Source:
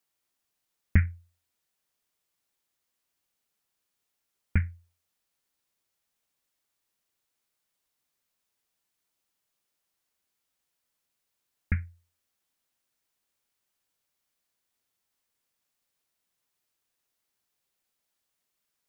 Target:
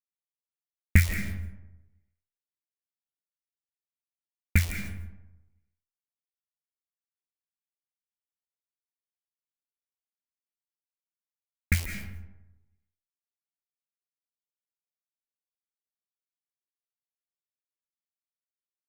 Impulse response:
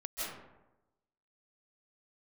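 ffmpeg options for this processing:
-filter_complex "[0:a]acrusher=bits=8:dc=4:mix=0:aa=0.000001,aexciter=amount=2:drive=9.4:freq=2200,asplit=2[link_01][link_02];[1:a]atrim=start_sample=2205[link_03];[link_02][link_03]afir=irnorm=-1:irlink=0,volume=-6dB[link_04];[link_01][link_04]amix=inputs=2:normalize=0"

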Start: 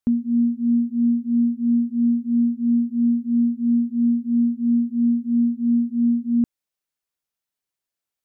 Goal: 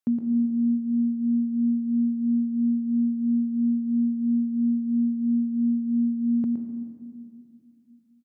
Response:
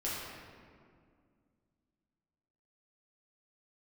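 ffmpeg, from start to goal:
-filter_complex "[0:a]highpass=150,aecho=1:1:116:0.447,asplit=2[link_01][link_02];[1:a]atrim=start_sample=2205,adelay=135[link_03];[link_02][link_03]afir=irnorm=-1:irlink=0,volume=-12dB[link_04];[link_01][link_04]amix=inputs=2:normalize=0,volume=-3.5dB"

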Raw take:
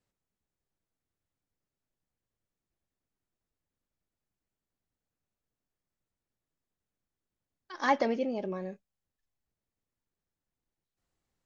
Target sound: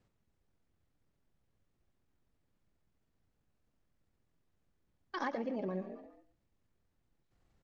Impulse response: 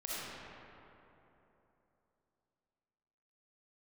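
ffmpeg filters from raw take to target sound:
-filter_complex "[0:a]aemphasis=mode=reproduction:type=50fm,asplit=2[link_01][link_02];[link_02]asplit=3[link_03][link_04][link_05];[link_03]adelay=203,afreqshift=42,volume=-18dB[link_06];[link_04]adelay=406,afreqshift=84,volume=-26.2dB[link_07];[link_05]adelay=609,afreqshift=126,volume=-34.4dB[link_08];[link_06][link_07][link_08]amix=inputs=3:normalize=0[link_09];[link_01][link_09]amix=inputs=2:normalize=0,acompressor=threshold=-43dB:ratio=8,lowshelf=frequency=260:gain=5,asplit=2[link_10][link_11];[link_11]aecho=0:1:162|324:0.188|0.032[link_12];[link_10][link_12]amix=inputs=2:normalize=0,atempo=1.5,volume=7.5dB"

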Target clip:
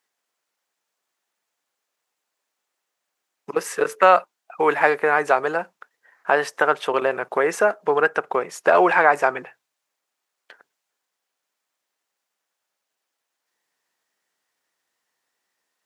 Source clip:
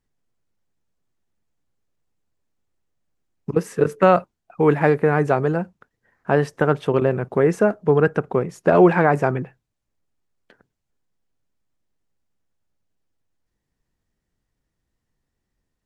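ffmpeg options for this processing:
ffmpeg -i in.wav -filter_complex "[0:a]highpass=760,asplit=2[link_01][link_02];[link_02]acompressor=threshold=-29dB:ratio=6,volume=-3dB[link_03];[link_01][link_03]amix=inputs=2:normalize=0,volume=4dB" out.wav

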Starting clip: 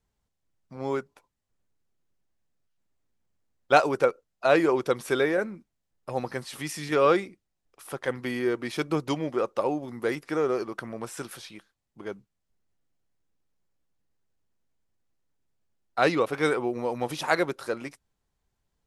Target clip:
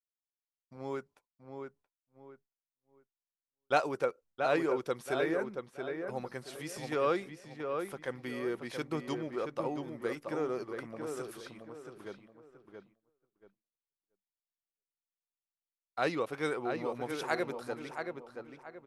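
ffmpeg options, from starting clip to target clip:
ffmpeg -i in.wav -filter_complex "[0:a]asplit=2[link_01][link_02];[link_02]adelay=677,lowpass=frequency=2500:poles=1,volume=-5.5dB,asplit=2[link_03][link_04];[link_04]adelay=677,lowpass=frequency=2500:poles=1,volume=0.33,asplit=2[link_05][link_06];[link_06]adelay=677,lowpass=frequency=2500:poles=1,volume=0.33,asplit=2[link_07][link_08];[link_08]adelay=677,lowpass=frequency=2500:poles=1,volume=0.33[link_09];[link_03][link_05][link_07][link_09]amix=inputs=4:normalize=0[link_10];[link_01][link_10]amix=inputs=2:normalize=0,agate=range=-33dB:threshold=-48dB:ratio=3:detection=peak,volume=-9dB" out.wav

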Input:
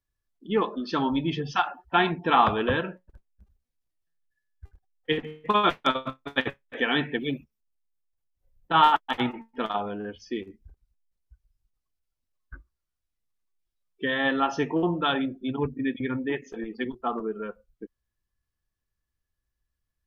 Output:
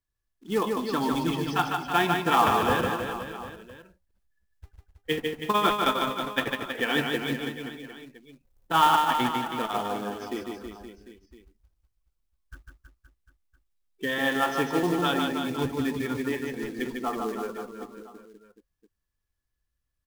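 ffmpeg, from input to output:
ffmpeg -i in.wav -filter_complex "[0:a]acrusher=bits=4:mode=log:mix=0:aa=0.000001,asplit=2[link_01][link_02];[link_02]aecho=0:1:150|322.5|520.9|749|1011:0.631|0.398|0.251|0.158|0.1[link_03];[link_01][link_03]amix=inputs=2:normalize=0,volume=-2dB" out.wav

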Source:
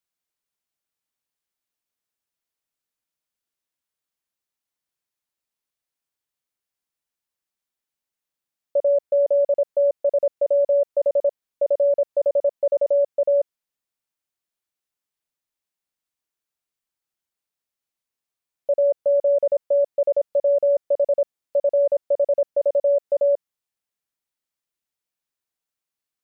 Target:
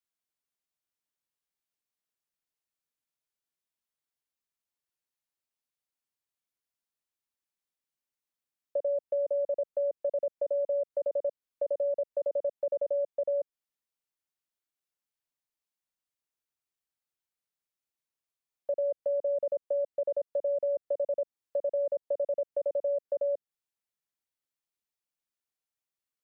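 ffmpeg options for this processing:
ffmpeg -i in.wav -filter_complex "[0:a]acrossover=split=290|650[link_01][link_02][link_03];[link_01]acompressor=threshold=-44dB:ratio=4[link_04];[link_02]acompressor=threshold=-24dB:ratio=4[link_05];[link_03]acompressor=threshold=-36dB:ratio=4[link_06];[link_04][link_05][link_06]amix=inputs=3:normalize=0,volume=-6dB" out.wav

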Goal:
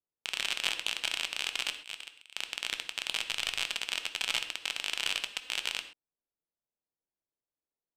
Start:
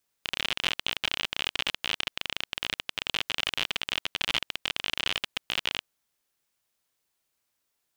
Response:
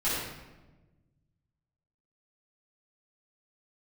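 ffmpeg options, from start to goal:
-filter_complex "[0:a]adynamicsmooth=sensitivity=5:basefreq=560,asplit=3[link_01][link_02][link_03];[link_01]afade=type=out:start_time=1.69:duration=0.02[link_04];[link_02]agate=range=-33dB:threshold=-24dB:ratio=3:detection=peak,afade=type=in:start_time=1.69:duration=0.02,afade=type=out:start_time=2.34:duration=0.02[link_05];[link_03]afade=type=in:start_time=2.34:duration=0.02[link_06];[link_04][link_05][link_06]amix=inputs=3:normalize=0,asplit=3[link_07][link_08][link_09];[link_07]afade=type=out:start_time=3.2:duration=0.02[link_10];[link_08]asubboost=boost=2.5:cutoff=160,afade=type=in:start_time=3.2:duration=0.02,afade=type=out:start_time=3.61:duration=0.02[link_11];[link_09]afade=type=in:start_time=3.61:duration=0.02[link_12];[link_10][link_11][link_12]amix=inputs=3:normalize=0,lowpass=11000,bass=frequency=250:gain=-9,treble=frequency=4000:gain=4,asplit=2[link_13][link_14];[1:a]atrim=start_sample=2205,atrim=end_sample=6174[link_15];[link_14][link_15]afir=irnorm=-1:irlink=0,volume=-16dB[link_16];[link_13][link_16]amix=inputs=2:normalize=0,volume=-5dB"

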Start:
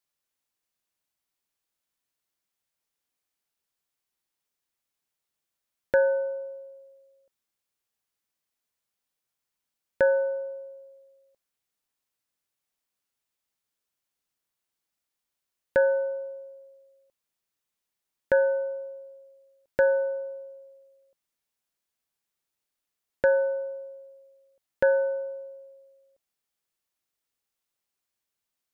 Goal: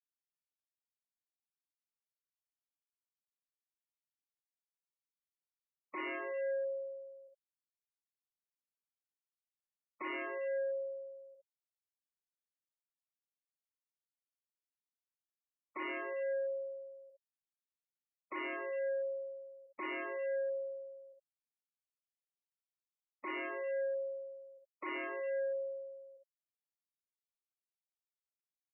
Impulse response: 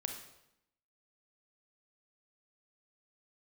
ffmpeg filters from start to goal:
-filter_complex "[0:a]aeval=exprs='(tanh(12.6*val(0)+0.35)-tanh(0.35))/12.6':channel_layout=same,asplit=2[link_01][link_02];[link_02]acompressor=threshold=-40dB:ratio=10,volume=-0.5dB[link_03];[link_01][link_03]amix=inputs=2:normalize=0,aeval=exprs='0.0224*(abs(mod(val(0)/0.0224+3,4)-2)-1)':channel_layout=same,highpass=frequency=300:width=0.5412,highpass=frequency=300:width=1.3066,equalizer=frequency=330:width_type=q:width=4:gain=8,equalizer=frequency=500:width_type=q:width=4:gain=-7,equalizer=frequency=750:width_type=q:width=4:gain=-6,equalizer=frequency=1100:width_type=q:width=4:gain=-6,equalizer=frequency=1500:width_type=q:width=4:gain=-9,lowpass=frequency=2100:width=0.5412,lowpass=frequency=2100:width=1.3066[link_04];[1:a]atrim=start_sample=2205,asetrate=61740,aresample=44100[link_05];[link_04][link_05]afir=irnorm=-1:irlink=0,afftfilt=real='re*gte(hypot(re,im),0.00355)':imag='im*gte(hypot(re,im),0.00355)':win_size=1024:overlap=0.75,volume=11dB"

